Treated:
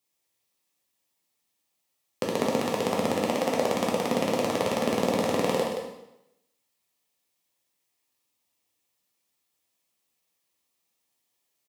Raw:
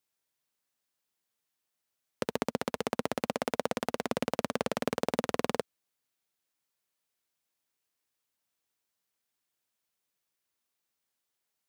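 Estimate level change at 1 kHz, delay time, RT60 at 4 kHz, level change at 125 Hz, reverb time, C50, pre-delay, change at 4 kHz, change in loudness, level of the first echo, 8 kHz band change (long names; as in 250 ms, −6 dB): +6.5 dB, 174 ms, 0.80 s, +6.5 dB, 0.85 s, 2.0 dB, 5 ms, +6.5 dB, +7.0 dB, −8.5 dB, +7.0 dB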